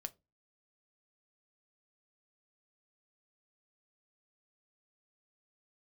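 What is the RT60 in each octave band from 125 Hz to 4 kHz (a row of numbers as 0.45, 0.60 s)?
0.40, 0.35, 0.25, 0.20, 0.15, 0.15 s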